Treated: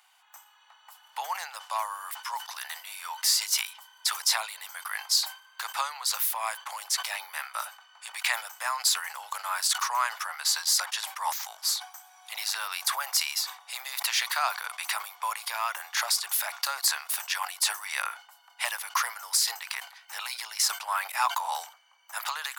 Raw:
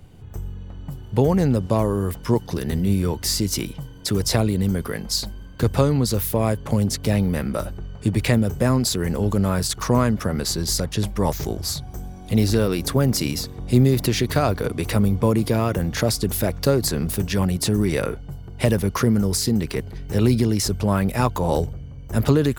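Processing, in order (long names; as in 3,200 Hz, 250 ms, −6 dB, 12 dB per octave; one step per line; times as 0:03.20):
Butterworth high-pass 830 Hz 48 dB per octave
level that may fall only so fast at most 140 dB per second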